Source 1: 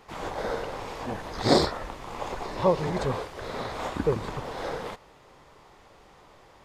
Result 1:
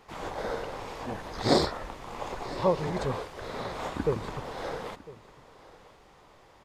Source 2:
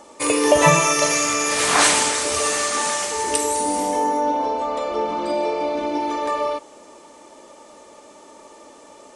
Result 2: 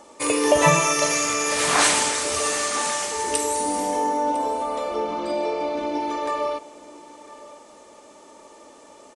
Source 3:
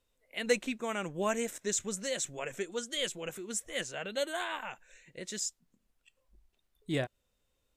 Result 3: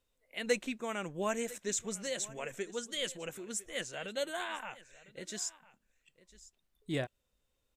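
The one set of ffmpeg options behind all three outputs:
-af "aecho=1:1:1003:0.106,volume=-2.5dB"

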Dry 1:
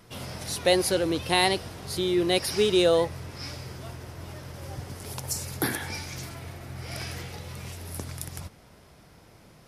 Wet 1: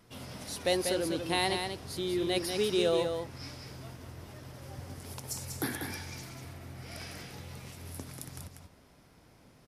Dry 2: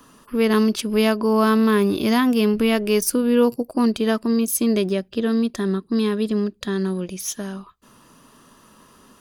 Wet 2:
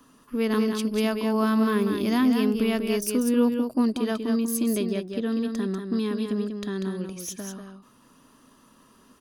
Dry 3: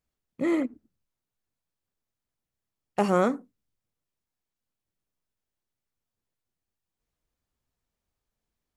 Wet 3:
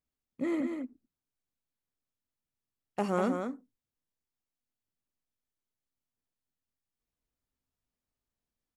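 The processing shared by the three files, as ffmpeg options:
-af "equalizer=f=260:w=5.1:g=6,aecho=1:1:192:0.501,volume=-7.5dB"

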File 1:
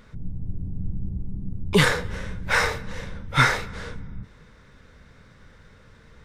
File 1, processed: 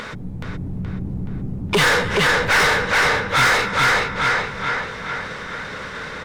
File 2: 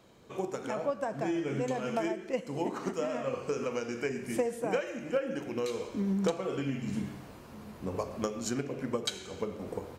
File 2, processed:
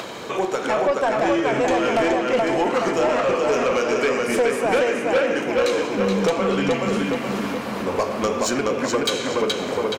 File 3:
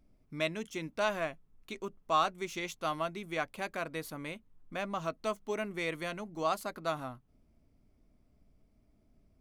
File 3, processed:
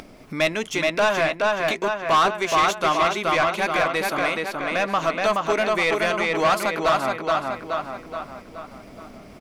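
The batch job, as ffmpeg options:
-filter_complex "[0:a]asoftclip=type=tanh:threshold=-16dB,acompressor=mode=upward:threshold=-36dB:ratio=2.5,asplit=2[a][b];[b]adelay=424,lowpass=f=4.9k:p=1,volume=-3dB,asplit=2[c][d];[d]adelay=424,lowpass=f=4.9k:p=1,volume=0.5,asplit=2[e][f];[f]adelay=424,lowpass=f=4.9k:p=1,volume=0.5,asplit=2[g][h];[h]adelay=424,lowpass=f=4.9k:p=1,volume=0.5,asplit=2[i][j];[j]adelay=424,lowpass=f=4.9k:p=1,volume=0.5,asplit=2[k][l];[l]adelay=424,lowpass=f=4.9k:p=1,volume=0.5,asplit=2[m][n];[n]adelay=424,lowpass=f=4.9k:p=1,volume=0.5[o];[c][e][g][i][k][m][o]amix=inputs=7:normalize=0[p];[a][p]amix=inputs=2:normalize=0,asplit=2[q][r];[r]highpass=f=720:p=1,volume=25dB,asoftclip=type=tanh:threshold=-8.5dB[s];[q][s]amix=inputs=2:normalize=0,lowpass=f=4.5k:p=1,volume=-6dB"

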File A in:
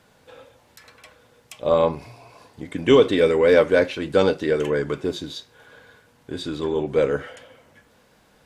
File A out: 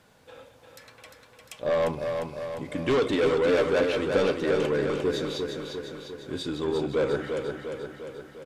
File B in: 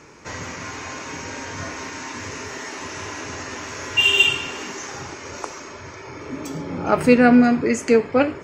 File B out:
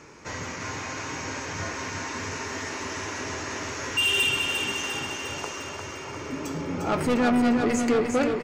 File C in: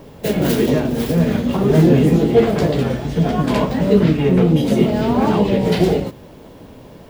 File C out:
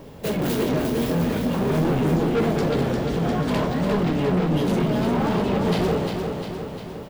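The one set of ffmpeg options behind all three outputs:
-af "asoftclip=type=tanh:threshold=-17.5dB,aecho=1:1:351|702|1053|1404|1755|2106|2457|2808:0.531|0.313|0.185|0.109|0.0643|0.038|0.0224|0.0132,volume=-2dB"

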